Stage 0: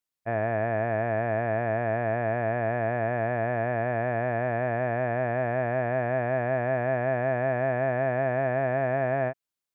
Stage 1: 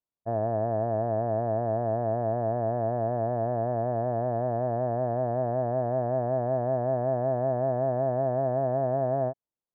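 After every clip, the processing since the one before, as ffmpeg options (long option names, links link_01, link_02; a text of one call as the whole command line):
ffmpeg -i in.wav -af "lowpass=frequency=1000:width=0.5412,lowpass=frequency=1000:width=1.3066" out.wav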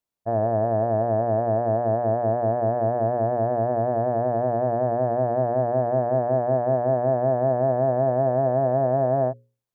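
ffmpeg -i in.wav -af "bandreject=frequency=60:width_type=h:width=6,bandreject=frequency=120:width_type=h:width=6,bandreject=frequency=180:width_type=h:width=6,bandreject=frequency=240:width_type=h:width=6,bandreject=frequency=300:width_type=h:width=6,bandreject=frequency=360:width_type=h:width=6,bandreject=frequency=420:width_type=h:width=6,bandreject=frequency=480:width_type=h:width=6,bandreject=frequency=540:width_type=h:width=6,volume=5.5dB" out.wav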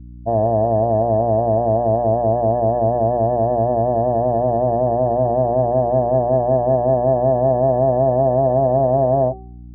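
ffmpeg -i in.wav -af "afftdn=noise_reduction=22:noise_floor=-34,bandreject=frequency=381.4:width_type=h:width=4,bandreject=frequency=762.8:width_type=h:width=4,bandreject=frequency=1144.2:width_type=h:width=4,bandreject=frequency=1525.6:width_type=h:width=4,bandreject=frequency=1907:width_type=h:width=4,bandreject=frequency=2288.4:width_type=h:width=4,bandreject=frequency=2669.8:width_type=h:width=4,bandreject=frequency=3051.2:width_type=h:width=4,bandreject=frequency=3432.6:width_type=h:width=4,bandreject=frequency=3814:width_type=h:width=4,bandreject=frequency=4195.4:width_type=h:width=4,bandreject=frequency=4576.8:width_type=h:width=4,bandreject=frequency=4958.2:width_type=h:width=4,bandreject=frequency=5339.6:width_type=h:width=4,bandreject=frequency=5721:width_type=h:width=4,bandreject=frequency=6102.4:width_type=h:width=4,bandreject=frequency=6483.8:width_type=h:width=4,bandreject=frequency=6865.2:width_type=h:width=4,bandreject=frequency=7246.6:width_type=h:width=4,bandreject=frequency=7628:width_type=h:width=4,bandreject=frequency=8009.4:width_type=h:width=4,bandreject=frequency=8390.8:width_type=h:width=4,bandreject=frequency=8772.2:width_type=h:width=4,bandreject=frequency=9153.6:width_type=h:width=4,bandreject=frequency=9535:width_type=h:width=4,bandreject=frequency=9916.4:width_type=h:width=4,bandreject=frequency=10297.8:width_type=h:width=4,bandreject=frequency=10679.2:width_type=h:width=4,bandreject=frequency=11060.6:width_type=h:width=4,bandreject=frequency=11442:width_type=h:width=4,bandreject=frequency=11823.4:width_type=h:width=4,bandreject=frequency=12204.8:width_type=h:width=4,bandreject=frequency=12586.2:width_type=h:width=4,bandreject=frequency=12967.6:width_type=h:width=4,bandreject=frequency=13349:width_type=h:width=4,bandreject=frequency=13730.4:width_type=h:width=4,bandreject=frequency=14111.8:width_type=h:width=4,bandreject=frequency=14493.2:width_type=h:width=4,bandreject=frequency=14874.6:width_type=h:width=4,bandreject=frequency=15256:width_type=h:width=4,aeval=exprs='val(0)+0.00891*(sin(2*PI*60*n/s)+sin(2*PI*2*60*n/s)/2+sin(2*PI*3*60*n/s)/3+sin(2*PI*4*60*n/s)/4+sin(2*PI*5*60*n/s)/5)':channel_layout=same,volume=5.5dB" out.wav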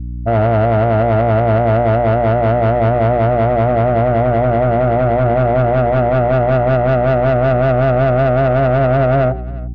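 ffmpeg -i in.wav -af "lowshelf=frequency=280:gain=9,asoftclip=type=tanh:threshold=-14.5dB,aecho=1:1:352:0.0891,volume=5dB" out.wav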